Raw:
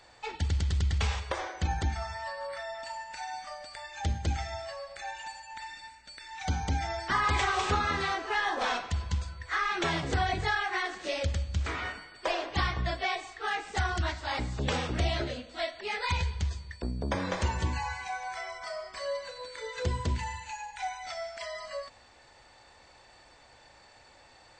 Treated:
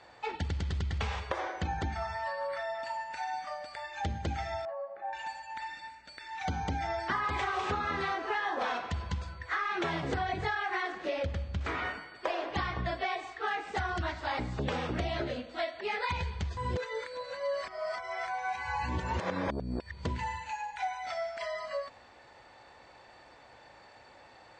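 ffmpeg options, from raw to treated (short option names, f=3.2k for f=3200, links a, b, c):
-filter_complex "[0:a]asettb=1/sr,asplit=3[a][b][c];[a]atrim=end=4.654[d];[b]atrim=start=4.65:end=5.13,asetpts=PTS-STARTPTS,afade=t=in:d=0.004:c=qsin,afade=t=out:st=0.476:d=0.004:c=qsin,asuperpass=centerf=480:order=4:qfactor=0.61[e];[c]atrim=start=5.126[f];[d][e]acrossfade=d=0.004:c1=hsin:c2=qsin[g];[g][f]acrossfade=d=0.004:c1=qsin:c2=hsin,asettb=1/sr,asplit=3[h][i][j];[h]atrim=end=10.924[k];[i]atrim=start=10.92:end=11.61,asetpts=PTS-STARTPTS,afade=t=in:d=0.004:c=qsin,afade=t=out:st=0.686:d=0.004:c=qsin,highshelf=f=5k:g=-10.5[l];[j]atrim=start=11.606[m];[k][l]acrossfade=d=0.004:c1=hsin:c2=qsin[n];[n][m]acrossfade=d=0.004:c1=qsin:c2=hsin,asplit=3[o][p][q];[o]atrim=end=16.572[r];[p]atrim=start=16.568:end=20.052,asetpts=PTS-STARTPTS,areverse[s];[q]atrim=start=20.048[t];[r][s]acrossfade=d=0.004:c1=hsin:c2=hsin[u];[u][t]acrossfade=d=0.004:c1=hsin:c2=hsin,highpass=f=130:p=1,aemphasis=mode=reproduction:type=75fm,acompressor=threshold=-32dB:ratio=6,volume=3dB"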